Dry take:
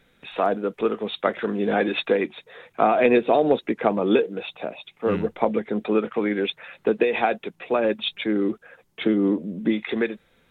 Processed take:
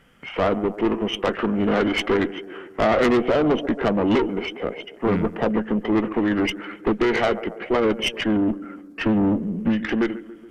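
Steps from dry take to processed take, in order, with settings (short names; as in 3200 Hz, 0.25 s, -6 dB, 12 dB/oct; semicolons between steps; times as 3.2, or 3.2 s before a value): tape echo 0.139 s, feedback 66%, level -16 dB, low-pass 1600 Hz; tube stage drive 21 dB, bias 0.45; formant shift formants -3 st; gain +6.5 dB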